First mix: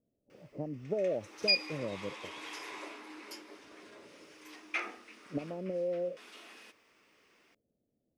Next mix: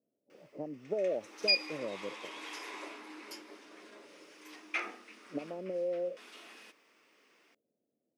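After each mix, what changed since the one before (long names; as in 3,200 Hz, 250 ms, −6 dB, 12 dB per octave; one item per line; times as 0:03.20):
speech: add high-pass filter 260 Hz 12 dB per octave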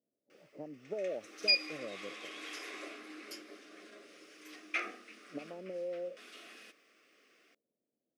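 speech −5.0 dB
background: add Butterworth band-reject 920 Hz, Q 2.9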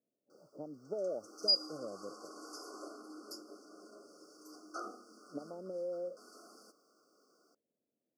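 master: add linear-phase brick-wall band-stop 1,500–4,400 Hz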